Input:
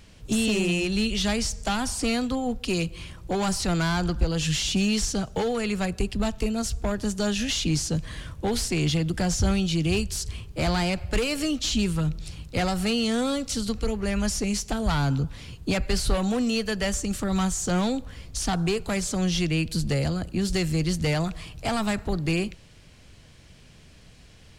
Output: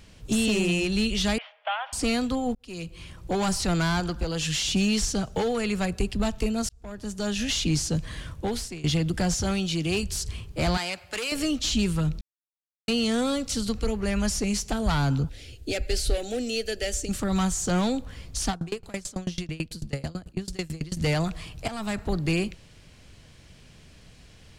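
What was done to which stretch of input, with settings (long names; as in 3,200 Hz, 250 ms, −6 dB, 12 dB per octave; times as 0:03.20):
0:01.38–0:01.93: Chebyshev band-pass filter 570–3,300 Hz, order 5
0:02.55–0:03.29: fade in
0:04.00–0:04.68: low-shelf EQ 200 Hz −7.5 dB
0:06.69–0:07.51: fade in linear
0:08.35–0:08.84: fade out, to −20.5 dB
0:09.34–0:10.03: low-shelf EQ 120 Hz −11.5 dB
0:10.77–0:11.32: high-pass filter 1,100 Hz 6 dB per octave
0:12.21–0:12.88: silence
0:15.29–0:17.09: phaser with its sweep stopped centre 430 Hz, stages 4
0:18.50–0:20.97: tremolo with a ramp in dB decaying 9.1 Hz, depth 26 dB
0:21.68–0:22.09: fade in, from −12.5 dB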